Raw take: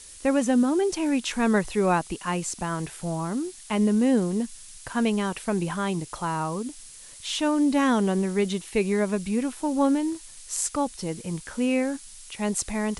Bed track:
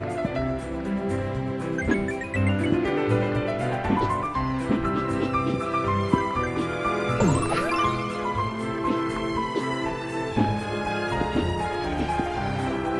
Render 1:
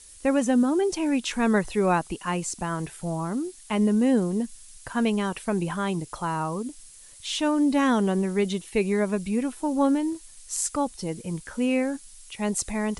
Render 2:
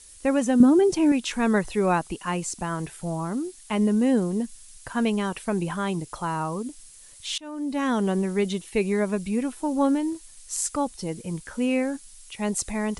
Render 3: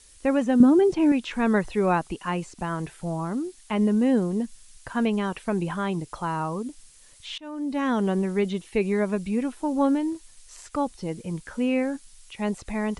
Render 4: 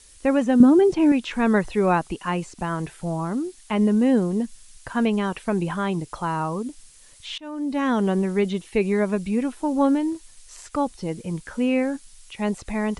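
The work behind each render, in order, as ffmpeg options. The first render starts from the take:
-af "afftdn=nr=6:nf=-46"
-filter_complex "[0:a]asettb=1/sr,asplit=3[s0][s1][s2];[s0]atrim=end=0.604[s3];[s1]atrim=start=0.6:end=1.12,asetpts=PTS-STARTPTS,afade=t=in:d=0.004:c=qsin,afade=t=out:st=0.516:d=0.004:c=qsin,equalizer=f=150:t=o:w=2.3:g=11.5[s4];[s2]atrim=start=1.116[s5];[s3][s4]acrossfade=d=0.004:c1=hsin:c2=qsin[s6];[s6][s5]acrossfade=d=0.004:c1=qsin:c2=hsin,asplit=2[s7][s8];[s7]atrim=end=7.38,asetpts=PTS-STARTPTS,afade=t=out:st=7.376:d=0.004:c=hsin:silence=0.0630957[s9];[s8]atrim=start=7.38,asetpts=PTS-STARTPTS,afade=t=in:d=0.72:silence=0.0630957[s10];[s9][s10]concat=n=2:v=0:a=1"
-filter_complex "[0:a]highshelf=f=8200:g=-10,acrossover=split=3500[s0][s1];[s1]acompressor=threshold=0.00501:ratio=4:attack=1:release=60[s2];[s0][s2]amix=inputs=2:normalize=0"
-af "volume=1.33"

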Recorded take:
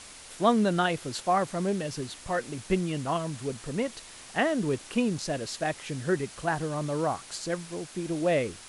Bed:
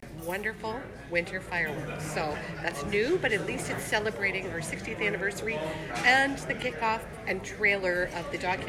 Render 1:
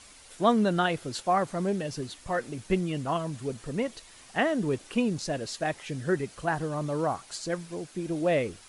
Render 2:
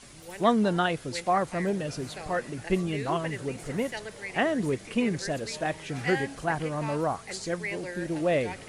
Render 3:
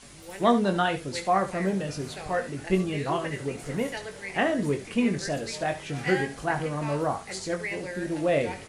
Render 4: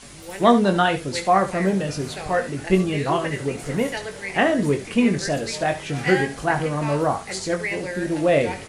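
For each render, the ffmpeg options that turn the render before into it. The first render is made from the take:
-af "afftdn=nr=7:nf=-47"
-filter_complex "[1:a]volume=0.316[s0];[0:a][s0]amix=inputs=2:normalize=0"
-filter_complex "[0:a]asplit=2[s0][s1];[s1]adelay=21,volume=0.447[s2];[s0][s2]amix=inputs=2:normalize=0,aecho=1:1:70:0.224"
-af "volume=2"

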